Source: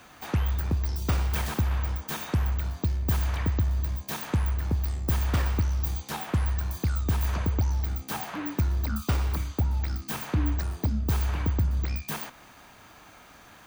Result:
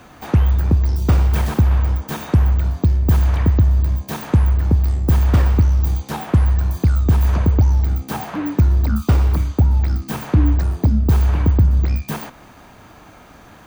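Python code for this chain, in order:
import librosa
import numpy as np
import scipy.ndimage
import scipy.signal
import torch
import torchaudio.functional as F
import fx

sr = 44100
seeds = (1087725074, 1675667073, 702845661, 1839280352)

y = fx.tilt_shelf(x, sr, db=5.0, hz=970.0)
y = y * librosa.db_to_amplitude(7.0)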